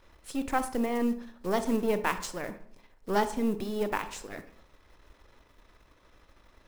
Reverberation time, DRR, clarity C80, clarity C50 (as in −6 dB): 0.60 s, 10.5 dB, 16.0 dB, 13.0 dB